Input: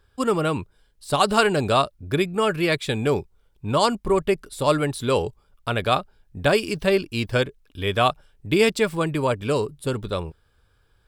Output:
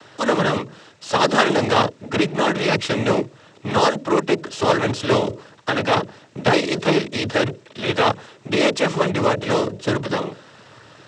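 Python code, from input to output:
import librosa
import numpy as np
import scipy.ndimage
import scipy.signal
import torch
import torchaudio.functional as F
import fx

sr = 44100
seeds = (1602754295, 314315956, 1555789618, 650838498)

y = fx.bin_compress(x, sr, power=0.6)
y = fx.hum_notches(y, sr, base_hz=60, count=8)
y = fx.noise_vocoder(y, sr, seeds[0], bands=12)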